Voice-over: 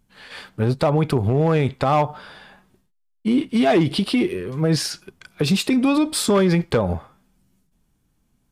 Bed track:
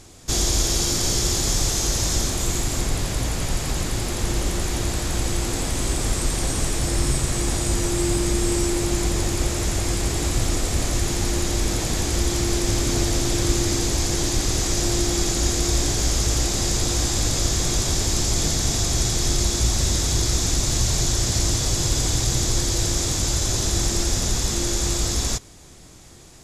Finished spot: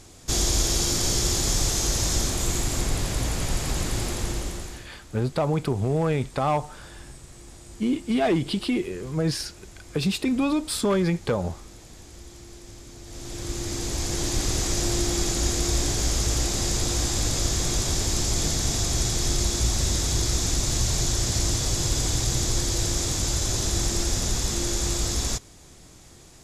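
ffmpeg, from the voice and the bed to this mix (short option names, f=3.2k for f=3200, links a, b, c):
-filter_complex "[0:a]adelay=4550,volume=-5.5dB[a];[1:a]volume=17.5dB,afade=t=out:st=4.03:d=0.85:silence=0.0944061,afade=t=in:st=13.03:d=1.4:silence=0.105925[b];[a][b]amix=inputs=2:normalize=0"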